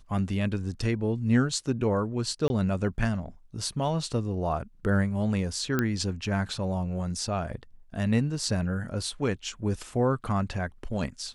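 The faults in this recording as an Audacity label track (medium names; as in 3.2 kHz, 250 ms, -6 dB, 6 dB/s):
2.480000	2.500000	dropout 21 ms
5.790000	5.790000	pop -12 dBFS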